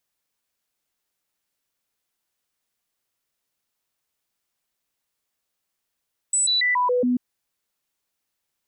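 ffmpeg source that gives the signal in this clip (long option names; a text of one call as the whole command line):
ffmpeg -f lavfi -i "aevalsrc='0.133*clip(min(mod(t,0.14),0.14-mod(t,0.14))/0.005,0,1)*sin(2*PI*7920*pow(2,-floor(t/0.14)/1)*mod(t,0.14))':duration=0.84:sample_rate=44100" out.wav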